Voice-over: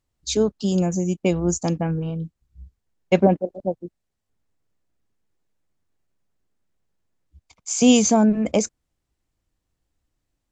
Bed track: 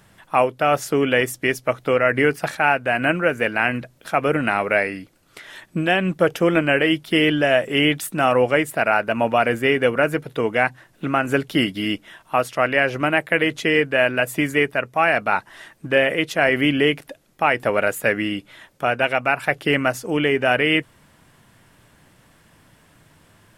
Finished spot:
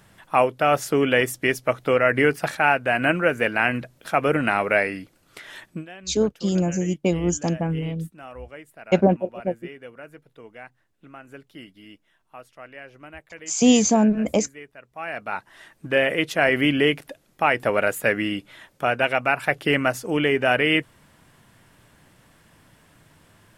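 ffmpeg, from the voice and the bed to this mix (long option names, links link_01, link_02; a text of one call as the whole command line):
ffmpeg -i stem1.wav -i stem2.wav -filter_complex "[0:a]adelay=5800,volume=-1dB[link_01];[1:a]volume=20.5dB,afade=type=out:start_time=5.63:duration=0.23:silence=0.0794328,afade=type=in:start_time=14.85:duration=1.33:silence=0.0841395[link_02];[link_01][link_02]amix=inputs=2:normalize=0" out.wav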